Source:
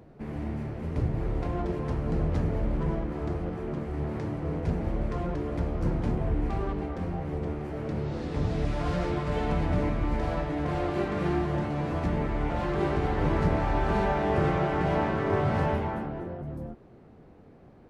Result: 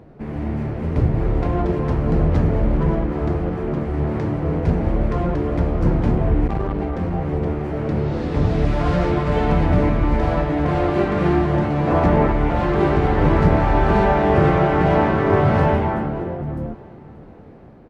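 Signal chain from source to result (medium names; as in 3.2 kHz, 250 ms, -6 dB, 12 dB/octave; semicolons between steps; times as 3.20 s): treble shelf 4.8 kHz -9 dB; level rider gain up to 3 dB; 11.87–12.32 s: peaking EQ 760 Hz +6.5 dB 2.4 oct; on a send: feedback delay 581 ms, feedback 36%, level -21 dB; 6.47–7.13 s: on the sum: transformer saturation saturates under 170 Hz; trim +7 dB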